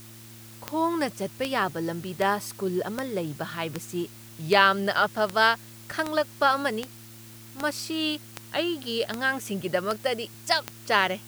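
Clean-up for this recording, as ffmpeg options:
-af "adeclick=t=4,bandreject=f=112.8:t=h:w=4,bandreject=f=225.6:t=h:w=4,bandreject=f=338.4:t=h:w=4,afftdn=nr=25:nf=-46"

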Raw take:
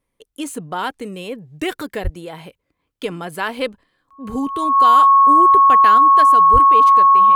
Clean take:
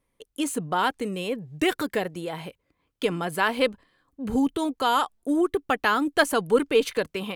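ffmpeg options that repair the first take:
-filter_complex "[0:a]bandreject=f=1.1k:w=30,asplit=3[a][b][c];[a]afade=t=out:st=2.03:d=0.02[d];[b]highpass=f=140:w=0.5412,highpass=f=140:w=1.3066,afade=t=in:st=2.03:d=0.02,afade=t=out:st=2.15:d=0.02[e];[c]afade=t=in:st=2.15:d=0.02[f];[d][e][f]amix=inputs=3:normalize=0,asplit=3[g][h][i];[g]afade=t=out:st=6.52:d=0.02[j];[h]highpass=f=140:w=0.5412,highpass=f=140:w=1.3066,afade=t=in:st=6.52:d=0.02,afade=t=out:st=6.64:d=0.02[k];[i]afade=t=in:st=6.64:d=0.02[l];[j][k][l]amix=inputs=3:normalize=0,asetnsamples=n=441:p=0,asendcmd='5.98 volume volume 5dB',volume=0dB"

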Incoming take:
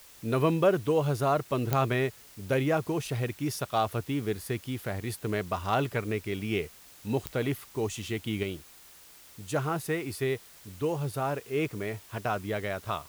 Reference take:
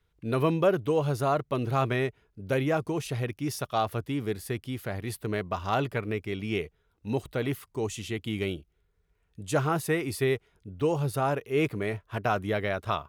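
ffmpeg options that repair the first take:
-af "adeclick=t=4,afwtdn=0.0022,asetnsamples=n=441:p=0,asendcmd='8.43 volume volume 3.5dB',volume=0dB"

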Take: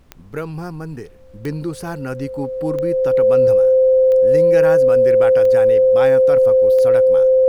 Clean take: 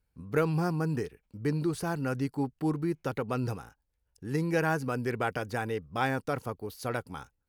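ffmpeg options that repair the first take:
-af "adeclick=t=4,bandreject=f=520:w=30,agate=range=-21dB:threshold=-27dB,asetnsamples=n=441:p=0,asendcmd='1.31 volume volume -4.5dB',volume=0dB"

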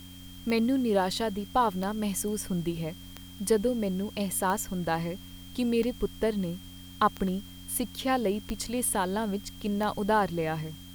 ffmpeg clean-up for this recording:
-af "adeclick=t=4,bandreject=f=90.6:t=h:w=4,bandreject=f=181.2:t=h:w=4,bandreject=f=271.8:t=h:w=4,bandreject=f=3.2k:w=30,afwtdn=0.002"

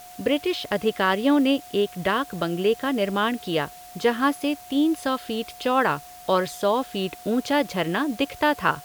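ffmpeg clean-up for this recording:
-af "bandreject=f=720:w=30,afwtdn=0.0045"

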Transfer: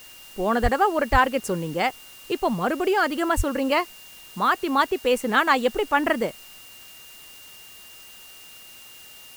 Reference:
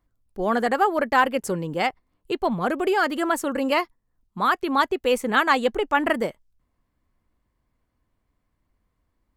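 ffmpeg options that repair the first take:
-filter_complex "[0:a]bandreject=f=2.8k:w=30,asplit=3[a][b][c];[a]afade=t=out:st=0.62:d=0.02[d];[b]highpass=f=140:w=0.5412,highpass=f=140:w=1.3066,afade=t=in:st=0.62:d=0.02,afade=t=out:st=0.74:d=0.02[e];[c]afade=t=in:st=0.74:d=0.02[f];[d][e][f]amix=inputs=3:normalize=0,asplit=3[g][h][i];[g]afade=t=out:st=1.11:d=0.02[j];[h]highpass=f=140:w=0.5412,highpass=f=140:w=1.3066,afade=t=in:st=1.11:d=0.02,afade=t=out:st=1.23:d=0.02[k];[i]afade=t=in:st=1.23:d=0.02[l];[j][k][l]amix=inputs=3:normalize=0,asplit=3[m][n][o];[m]afade=t=out:st=3.36:d=0.02[p];[n]highpass=f=140:w=0.5412,highpass=f=140:w=1.3066,afade=t=in:st=3.36:d=0.02,afade=t=out:st=3.48:d=0.02[q];[o]afade=t=in:st=3.48:d=0.02[r];[p][q][r]amix=inputs=3:normalize=0,afwtdn=0.0045"

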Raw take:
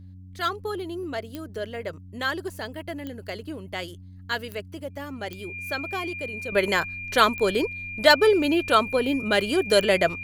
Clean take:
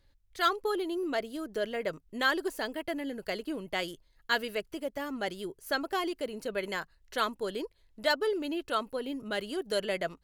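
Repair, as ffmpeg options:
-af "adeclick=t=4,bandreject=f=92.5:t=h:w=4,bandreject=f=185:t=h:w=4,bandreject=f=277.5:t=h:w=4,bandreject=f=2.4k:w=30,asetnsamples=n=441:p=0,asendcmd='6.52 volume volume -11.5dB',volume=0dB"

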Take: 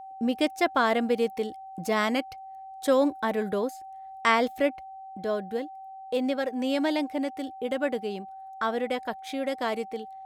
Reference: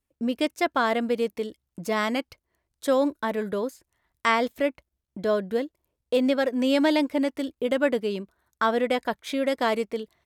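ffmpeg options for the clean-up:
-af "bandreject=f=770:w=30,asetnsamples=n=441:p=0,asendcmd='5.12 volume volume 5dB',volume=0dB"

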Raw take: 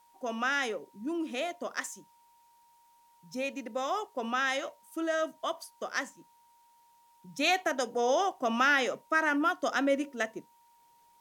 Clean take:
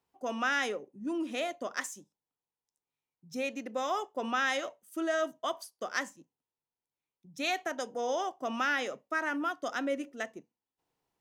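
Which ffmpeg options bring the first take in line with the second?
-af "bandreject=f=940:w=30,agate=range=-21dB:threshold=-55dB,asetnsamples=n=441:p=0,asendcmd='6.71 volume volume -5dB',volume=0dB"

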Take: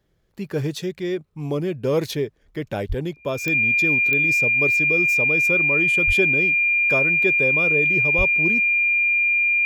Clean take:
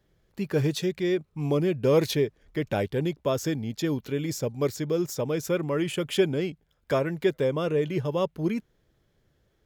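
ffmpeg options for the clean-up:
-filter_complex "[0:a]adeclick=t=4,bandreject=f=2.4k:w=30,asplit=3[a][b][c];[a]afade=t=out:st=2.88:d=0.02[d];[b]highpass=f=140:w=0.5412,highpass=f=140:w=1.3066,afade=t=in:st=2.88:d=0.02,afade=t=out:st=3:d=0.02[e];[c]afade=t=in:st=3:d=0.02[f];[d][e][f]amix=inputs=3:normalize=0,asplit=3[g][h][i];[g]afade=t=out:st=6.06:d=0.02[j];[h]highpass=f=140:w=0.5412,highpass=f=140:w=1.3066,afade=t=in:st=6.06:d=0.02,afade=t=out:st=6.18:d=0.02[k];[i]afade=t=in:st=6.18:d=0.02[l];[j][k][l]amix=inputs=3:normalize=0,asplit=3[m][n][o];[m]afade=t=out:st=8.17:d=0.02[p];[n]highpass=f=140:w=0.5412,highpass=f=140:w=1.3066,afade=t=in:st=8.17:d=0.02,afade=t=out:st=8.29:d=0.02[q];[o]afade=t=in:st=8.29:d=0.02[r];[p][q][r]amix=inputs=3:normalize=0"

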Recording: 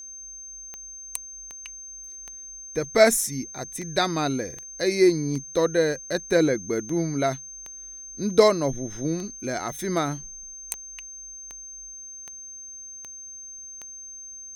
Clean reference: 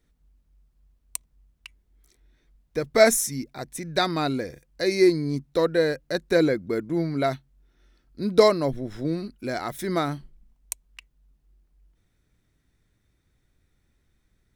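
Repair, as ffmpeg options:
-af "adeclick=t=4,bandreject=f=6.3k:w=30"

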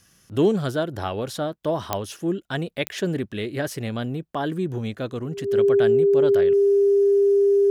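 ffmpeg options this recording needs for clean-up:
-af "adeclick=t=4,bandreject=f=400:w=30"

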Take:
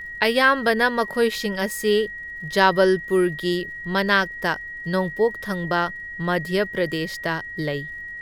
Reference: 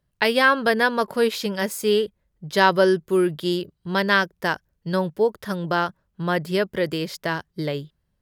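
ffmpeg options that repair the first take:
-af "adeclick=t=4,bandreject=f=1.9k:w=30,agate=range=-21dB:threshold=-27dB"

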